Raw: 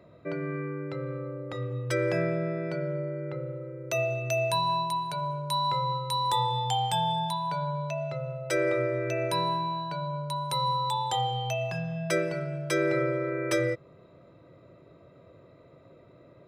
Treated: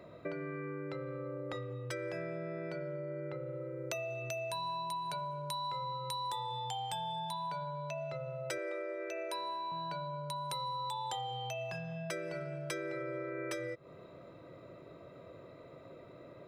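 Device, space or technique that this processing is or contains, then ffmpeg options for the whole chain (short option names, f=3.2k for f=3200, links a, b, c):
serial compression, leveller first: -filter_complex "[0:a]acompressor=threshold=-33dB:ratio=2,acompressor=threshold=-39dB:ratio=6,equalizer=f=74:w=0.36:g=-6,asettb=1/sr,asplit=3[a][b][c];[a]atrim=end=8.584[d];[b]atrim=start=8.58:end=9.72,asetpts=PTS-STARTPTS,afade=t=in:d=0.004:c=qsin,afade=t=out:st=1.136:d=0.004:c=qsin,highpass=f=300:w=0.5412,highpass=f=300:w=1.3066[e];[c]atrim=start=9.716[f];[d][e]acrossfade=d=0.004:c1=hsin:c2=qsin[g];[g][f]acrossfade=d=0.004:c1=qsin:c2=hsin,volume=3.5dB"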